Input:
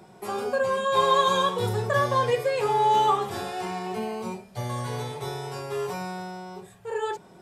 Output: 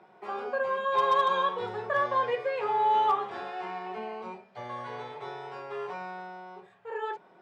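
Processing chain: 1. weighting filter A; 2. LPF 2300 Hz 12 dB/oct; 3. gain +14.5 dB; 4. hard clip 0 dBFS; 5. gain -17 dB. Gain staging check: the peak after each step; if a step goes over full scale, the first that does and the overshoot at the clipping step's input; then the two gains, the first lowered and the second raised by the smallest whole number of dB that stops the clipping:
-10.5, -11.5, +3.0, 0.0, -17.0 dBFS; step 3, 3.0 dB; step 3 +11.5 dB, step 5 -14 dB

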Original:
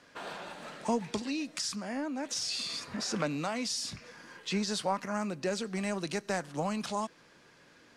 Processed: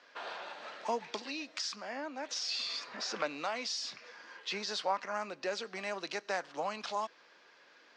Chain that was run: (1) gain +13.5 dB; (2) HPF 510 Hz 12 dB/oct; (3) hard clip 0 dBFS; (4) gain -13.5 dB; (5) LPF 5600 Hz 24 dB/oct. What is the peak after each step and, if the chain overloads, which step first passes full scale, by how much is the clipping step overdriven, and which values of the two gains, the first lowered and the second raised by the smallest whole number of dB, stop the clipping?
-4.5, -4.5, -4.5, -18.0, -18.0 dBFS; no overload

